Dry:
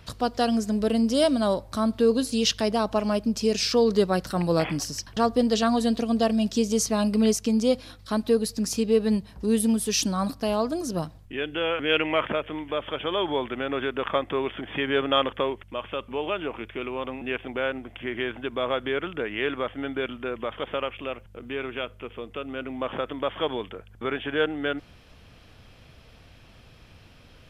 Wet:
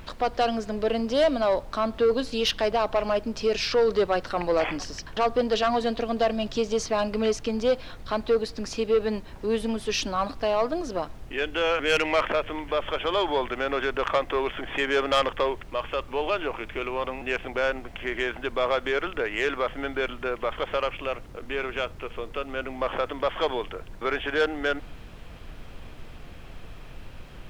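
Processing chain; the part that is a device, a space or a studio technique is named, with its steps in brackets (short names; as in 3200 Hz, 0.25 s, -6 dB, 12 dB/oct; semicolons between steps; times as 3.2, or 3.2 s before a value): aircraft cabin announcement (BPF 430–3200 Hz; soft clip -20 dBFS, distortion -14 dB; brown noise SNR 13 dB); gain +5 dB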